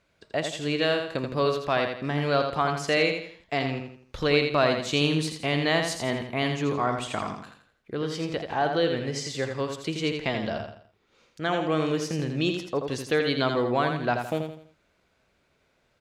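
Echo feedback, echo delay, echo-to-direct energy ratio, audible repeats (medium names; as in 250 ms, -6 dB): 37%, 83 ms, -5.5 dB, 4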